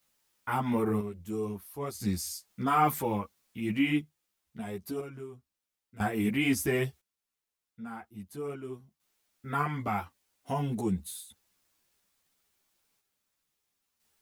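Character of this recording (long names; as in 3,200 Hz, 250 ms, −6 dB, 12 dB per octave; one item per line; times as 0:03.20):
a quantiser's noise floor 12 bits, dither triangular
sample-and-hold tremolo 1 Hz, depth 85%
a shimmering, thickened sound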